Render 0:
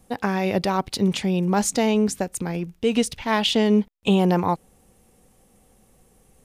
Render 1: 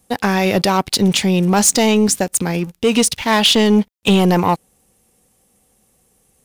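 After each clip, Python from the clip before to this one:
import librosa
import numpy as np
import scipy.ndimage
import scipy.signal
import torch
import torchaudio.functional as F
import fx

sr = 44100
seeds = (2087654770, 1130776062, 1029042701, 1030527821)

y = fx.highpass(x, sr, hz=51.0, slope=6)
y = fx.high_shelf(y, sr, hz=2800.0, db=8.0)
y = fx.leveller(y, sr, passes=2)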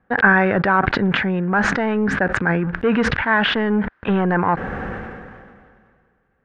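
y = fx.rider(x, sr, range_db=3, speed_s=0.5)
y = fx.ladder_lowpass(y, sr, hz=1700.0, resonance_pct=75)
y = fx.sustainer(y, sr, db_per_s=29.0)
y = y * 10.0 ** (6.5 / 20.0)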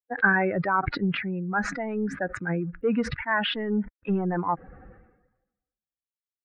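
y = fx.bin_expand(x, sr, power=2.0)
y = y * 10.0 ** (-4.0 / 20.0)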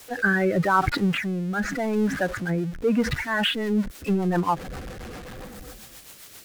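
y = x + 0.5 * 10.0 ** (-34.5 / 20.0) * np.sign(x)
y = fx.rotary_switch(y, sr, hz=0.85, then_hz=7.5, switch_at_s=2.96)
y = y * 10.0 ** (4.0 / 20.0)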